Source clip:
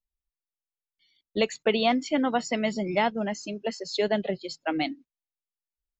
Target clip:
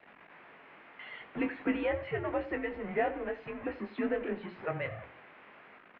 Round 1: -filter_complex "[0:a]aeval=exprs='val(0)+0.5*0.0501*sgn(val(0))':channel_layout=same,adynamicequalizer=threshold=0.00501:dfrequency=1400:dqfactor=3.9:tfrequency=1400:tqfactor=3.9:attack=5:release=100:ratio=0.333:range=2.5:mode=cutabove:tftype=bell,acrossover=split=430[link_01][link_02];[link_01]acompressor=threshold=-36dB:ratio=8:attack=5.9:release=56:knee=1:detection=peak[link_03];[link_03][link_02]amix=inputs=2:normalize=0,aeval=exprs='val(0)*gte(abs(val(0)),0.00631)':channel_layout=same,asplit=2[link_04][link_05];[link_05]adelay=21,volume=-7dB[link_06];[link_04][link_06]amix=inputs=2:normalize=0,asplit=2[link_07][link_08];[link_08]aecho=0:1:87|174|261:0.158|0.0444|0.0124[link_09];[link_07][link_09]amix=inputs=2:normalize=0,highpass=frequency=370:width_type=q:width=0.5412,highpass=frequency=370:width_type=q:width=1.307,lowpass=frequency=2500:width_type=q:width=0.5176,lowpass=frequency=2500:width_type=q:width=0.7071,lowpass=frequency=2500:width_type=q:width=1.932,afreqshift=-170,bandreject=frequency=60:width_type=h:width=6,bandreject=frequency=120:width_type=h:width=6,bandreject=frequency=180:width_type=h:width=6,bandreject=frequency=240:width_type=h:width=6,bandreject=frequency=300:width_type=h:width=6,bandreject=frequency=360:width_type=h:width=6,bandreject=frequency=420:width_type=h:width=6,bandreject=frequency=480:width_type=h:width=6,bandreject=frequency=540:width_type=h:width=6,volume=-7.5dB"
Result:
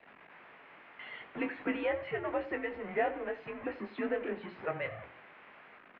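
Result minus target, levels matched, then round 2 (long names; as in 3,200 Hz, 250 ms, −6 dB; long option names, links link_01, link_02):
downward compressor: peak gain reduction +14 dB
-filter_complex "[0:a]aeval=exprs='val(0)+0.5*0.0501*sgn(val(0))':channel_layout=same,adynamicequalizer=threshold=0.00501:dfrequency=1400:dqfactor=3.9:tfrequency=1400:tqfactor=3.9:attack=5:release=100:ratio=0.333:range=2.5:mode=cutabove:tftype=bell,aeval=exprs='val(0)*gte(abs(val(0)),0.00631)':channel_layout=same,asplit=2[link_01][link_02];[link_02]adelay=21,volume=-7dB[link_03];[link_01][link_03]amix=inputs=2:normalize=0,asplit=2[link_04][link_05];[link_05]aecho=0:1:87|174|261:0.158|0.0444|0.0124[link_06];[link_04][link_06]amix=inputs=2:normalize=0,highpass=frequency=370:width_type=q:width=0.5412,highpass=frequency=370:width_type=q:width=1.307,lowpass=frequency=2500:width_type=q:width=0.5176,lowpass=frequency=2500:width_type=q:width=0.7071,lowpass=frequency=2500:width_type=q:width=1.932,afreqshift=-170,bandreject=frequency=60:width_type=h:width=6,bandreject=frequency=120:width_type=h:width=6,bandreject=frequency=180:width_type=h:width=6,bandreject=frequency=240:width_type=h:width=6,bandreject=frequency=300:width_type=h:width=6,bandreject=frequency=360:width_type=h:width=6,bandreject=frequency=420:width_type=h:width=6,bandreject=frequency=480:width_type=h:width=6,bandreject=frequency=540:width_type=h:width=6,volume=-7.5dB"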